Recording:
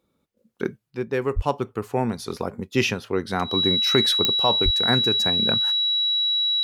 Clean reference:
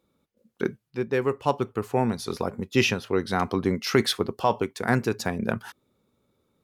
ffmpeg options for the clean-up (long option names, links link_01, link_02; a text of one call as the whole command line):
ffmpeg -i in.wav -filter_complex "[0:a]adeclick=threshold=4,bandreject=frequency=3900:width=30,asplit=3[link_01][link_02][link_03];[link_01]afade=type=out:start_time=1.35:duration=0.02[link_04];[link_02]highpass=frequency=140:width=0.5412,highpass=frequency=140:width=1.3066,afade=type=in:start_time=1.35:duration=0.02,afade=type=out:start_time=1.47:duration=0.02[link_05];[link_03]afade=type=in:start_time=1.47:duration=0.02[link_06];[link_04][link_05][link_06]amix=inputs=3:normalize=0,asplit=3[link_07][link_08][link_09];[link_07]afade=type=out:start_time=4.64:duration=0.02[link_10];[link_08]highpass=frequency=140:width=0.5412,highpass=frequency=140:width=1.3066,afade=type=in:start_time=4.64:duration=0.02,afade=type=out:start_time=4.76:duration=0.02[link_11];[link_09]afade=type=in:start_time=4.76:duration=0.02[link_12];[link_10][link_11][link_12]amix=inputs=3:normalize=0" out.wav